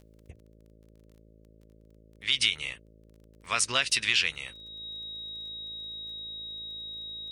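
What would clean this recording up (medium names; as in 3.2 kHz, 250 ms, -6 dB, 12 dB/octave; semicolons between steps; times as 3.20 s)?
de-click; de-hum 54.4 Hz, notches 11; band-stop 3.8 kHz, Q 30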